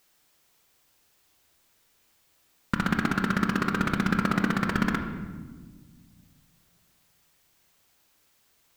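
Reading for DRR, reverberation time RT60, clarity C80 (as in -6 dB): 5.0 dB, 1.5 s, 8.5 dB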